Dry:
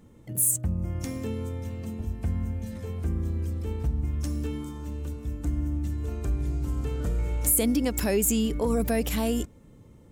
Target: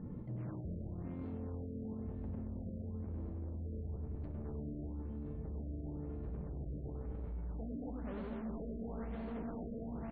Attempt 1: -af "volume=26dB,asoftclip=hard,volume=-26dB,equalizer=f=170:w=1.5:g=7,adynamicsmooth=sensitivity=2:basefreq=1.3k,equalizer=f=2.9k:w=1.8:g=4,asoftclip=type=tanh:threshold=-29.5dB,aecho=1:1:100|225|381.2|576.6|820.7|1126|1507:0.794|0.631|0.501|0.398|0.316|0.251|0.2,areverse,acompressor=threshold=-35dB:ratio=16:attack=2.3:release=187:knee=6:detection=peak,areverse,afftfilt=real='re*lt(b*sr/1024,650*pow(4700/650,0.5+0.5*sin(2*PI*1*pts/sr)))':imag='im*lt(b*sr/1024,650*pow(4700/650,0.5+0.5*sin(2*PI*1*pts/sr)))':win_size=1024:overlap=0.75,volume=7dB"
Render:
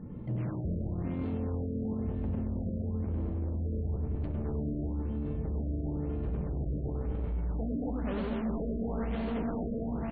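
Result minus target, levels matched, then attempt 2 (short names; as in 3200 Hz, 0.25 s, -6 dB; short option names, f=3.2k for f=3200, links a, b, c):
compressor: peak gain reduction -9.5 dB; 4000 Hz band +6.0 dB
-af "volume=26dB,asoftclip=hard,volume=-26dB,equalizer=f=170:w=1.5:g=7,adynamicsmooth=sensitivity=2:basefreq=1.3k,equalizer=f=2.9k:w=1.8:g=-4,asoftclip=type=tanh:threshold=-29.5dB,aecho=1:1:100|225|381.2|576.6|820.7|1126|1507:0.794|0.631|0.501|0.398|0.316|0.251|0.2,areverse,acompressor=threshold=-45dB:ratio=16:attack=2.3:release=187:knee=6:detection=peak,areverse,afftfilt=real='re*lt(b*sr/1024,650*pow(4700/650,0.5+0.5*sin(2*PI*1*pts/sr)))':imag='im*lt(b*sr/1024,650*pow(4700/650,0.5+0.5*sin(2*PI*1*pts/sr)))':win_size=1024:overlap=0.75,volume=7dB"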